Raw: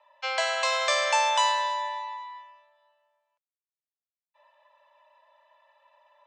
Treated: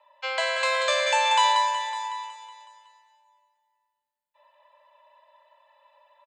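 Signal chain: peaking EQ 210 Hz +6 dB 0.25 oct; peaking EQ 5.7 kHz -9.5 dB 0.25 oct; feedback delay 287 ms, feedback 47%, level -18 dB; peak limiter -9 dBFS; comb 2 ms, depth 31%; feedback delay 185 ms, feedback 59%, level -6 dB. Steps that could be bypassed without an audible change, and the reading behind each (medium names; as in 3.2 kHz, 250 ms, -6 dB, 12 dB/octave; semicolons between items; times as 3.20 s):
peaking EQ 210 Hz: input has nothing below 510 Hz; peak limiter -9 dBFS: peak at its input -12.0 dBFS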